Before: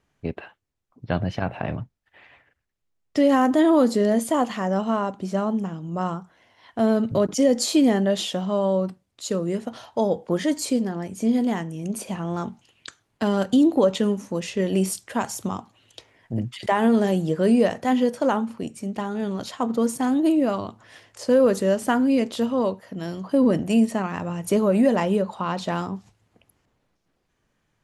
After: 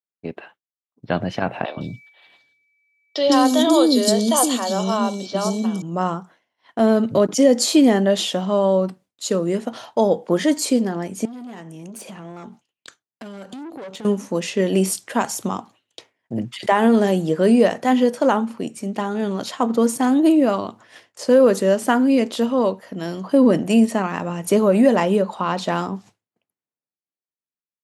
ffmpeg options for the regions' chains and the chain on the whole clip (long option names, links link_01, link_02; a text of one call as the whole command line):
ffmpeg -i in.wav -filter_complex "[0:a]asettb=1/sr,asplit=3[link_01][link_02][link_03];[link_01]atrim=end=1.654[link_04];[link_02]atrim=start=1.65:end=5.82,asetpts=PTS-STARTPTS,afade=type=in:duration=0.004:curve=qsin,afade=type=out:start_time=4.166:duration=0.004:curve=qsin,aeval=exprs='val(0)+0.00501*sin(2*PI*2300*n/s)':channel_layout=same,highshelf=frequency=2900:width_type=q:width=3:gain=9.5,acrossover=split=420|4300[link_05][link_06][link_07];[link_05]adelay=120[link_08];[link_07]adelay=160[link_09];[link_08][link_06][link_09]amix=inputs=3:normalize=0,atrim=end_sample=183897[link_10];[link_03]atrim=start=5.816[link_11];[link_04][link_10]acrossfade=duration=0.004:curve1=hsin:curve2=qsin[link_12];[link_12][link_11]acrossfade=duration=0.004:curve1=qsin:curve2=hsin,asettb=1/sr,asplit=3[link_13][link_14][link_15];[link_13]atrim=end=11.254[link_16];[link_14]atrim=start=11.25:end=14.05,asetpts=PTS-STARTPTS,afade=type=in:duration=0.004:curve=qsin,afade=type=out:start_time=2.796:duration=0.004:curve=qsin,aeval=exprs='(tanh(12.6*val(0)+0.5)-tanh(0.5))/12.6':channel_layout=same,acompressor=threshold=-37dB:ratio=6:attack=3.2:release=140:knee=1:detection=peak[link_17];[link_15]atrim=start=14.046[link_18];[link_16][link_17]acrossfade=duration=0.004:curve1=hsin:curve2=qsin[link_19];[link_19][link_18]acrossfade=duration=0.004:curve1=qsin:curve2=hsin,agate=range=-33dB:threshold=-44dB:ratio=3:detection=peak,highpass=180,dynaudnorm=framelen=140:gausssize=13:maxgain=5.5dB" out.wav